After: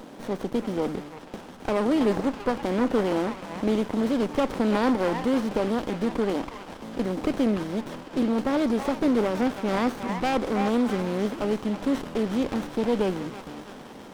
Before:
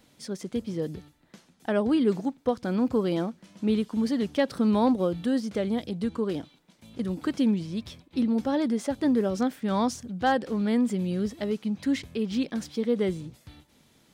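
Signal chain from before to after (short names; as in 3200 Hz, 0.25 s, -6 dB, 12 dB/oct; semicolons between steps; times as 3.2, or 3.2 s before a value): per-bin compression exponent 0.6; HPF 170 Hz 12 dB/oct; delay with a stepping band-pass 0.325 s, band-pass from 1200 Hz, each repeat 0.7 oct, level -1.5 dB; running maximum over 17 samples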